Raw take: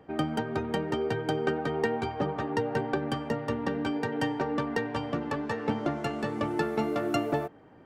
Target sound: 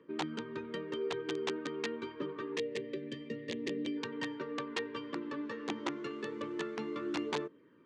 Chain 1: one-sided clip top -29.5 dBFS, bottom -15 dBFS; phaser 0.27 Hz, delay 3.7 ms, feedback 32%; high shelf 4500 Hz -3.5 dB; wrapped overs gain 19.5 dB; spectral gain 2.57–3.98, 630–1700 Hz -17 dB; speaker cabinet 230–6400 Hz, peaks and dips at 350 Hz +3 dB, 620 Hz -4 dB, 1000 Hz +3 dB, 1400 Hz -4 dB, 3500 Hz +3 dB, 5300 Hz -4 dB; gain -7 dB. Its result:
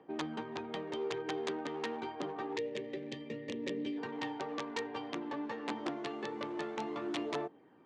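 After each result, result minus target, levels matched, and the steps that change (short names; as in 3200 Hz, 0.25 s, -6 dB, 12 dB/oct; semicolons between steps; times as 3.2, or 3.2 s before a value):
one-sided clip: distortion +13 dB; 1000 Hz band +3.5 dB
change: one-sided clip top -19 dBFS, bottom -15 dBFS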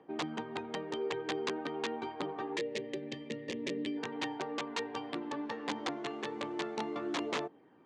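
1000 Hz band +3.5 dB
add after phaser: Butterworth band-stop 760 Hz, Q 1.7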